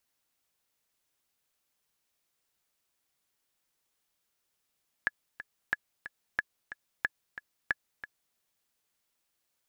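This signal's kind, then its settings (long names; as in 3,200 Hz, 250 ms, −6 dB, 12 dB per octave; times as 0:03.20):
click track 182 BPM, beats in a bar 2, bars 5, 1,700 Hz, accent 13.5 dB −13.5 dBFS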